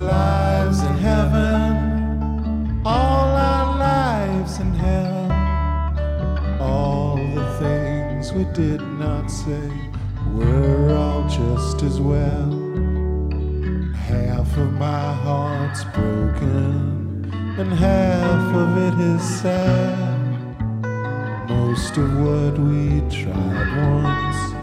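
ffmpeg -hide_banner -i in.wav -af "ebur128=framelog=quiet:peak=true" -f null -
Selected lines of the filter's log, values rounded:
Integrated loudness:
  I:         -20.4 LUFS
  Threshold: -30.4 LUFS
Loudness range:
  LRA:         3.1 LU
  Threshold: -40.6 LUFS
  LRA low:   -22.0 LUFS
  LRA high:  -18.9 LUFS
True peak:
  Peak:       -5.8 dBFS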